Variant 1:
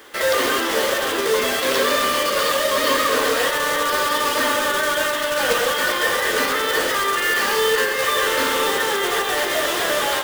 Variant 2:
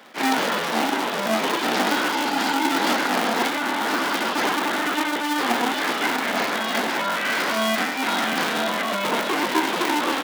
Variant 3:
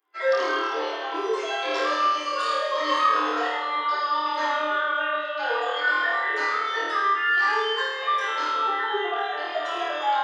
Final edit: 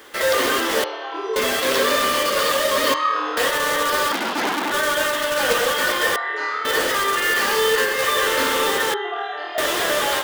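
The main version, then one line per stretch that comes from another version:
1
0.84–1.36 from 3
2.94–3.37 from 3
4.12–4.72 from 2
6.16–6.65 from 3
8.94–9.58 from 3

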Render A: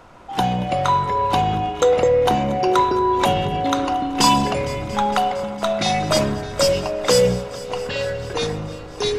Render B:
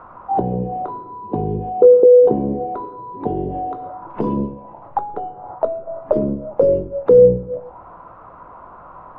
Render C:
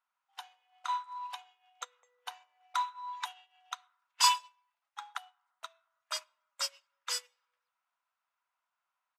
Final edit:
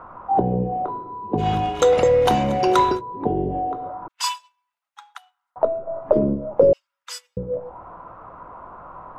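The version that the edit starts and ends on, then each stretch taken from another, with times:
B
1.42–2.97 from A, crossfade 0.10 s
4.08–5.56 from C
6.73–7.37 from C

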